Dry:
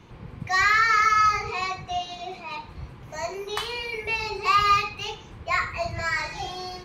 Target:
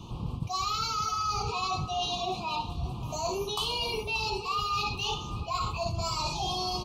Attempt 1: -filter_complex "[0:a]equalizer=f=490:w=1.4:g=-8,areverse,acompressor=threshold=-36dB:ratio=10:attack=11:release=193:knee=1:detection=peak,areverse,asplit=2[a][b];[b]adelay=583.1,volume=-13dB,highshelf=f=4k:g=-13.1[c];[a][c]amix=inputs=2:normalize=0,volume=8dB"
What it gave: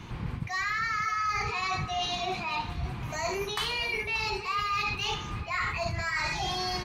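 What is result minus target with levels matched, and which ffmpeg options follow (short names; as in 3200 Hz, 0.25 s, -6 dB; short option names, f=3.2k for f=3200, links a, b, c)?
2000 Hz band +8.0 dB
-filter_complex "[0:a]asuperstop=centerf=1800:order=8:qfactor=1.2,equalizer=f=490:w=1.4:g=-8,areverse,acompressor=threshold=-36dB:ratio=10:attack=11:release=193:knee=1:detection=peak,areverse,asplit=2[a][b];[b]adelay=583.1,volume=-13dB,highshelf=f=4k:g=-13.1[c];[a][c]amix=inputs=2:normalize=0,volume=8dB"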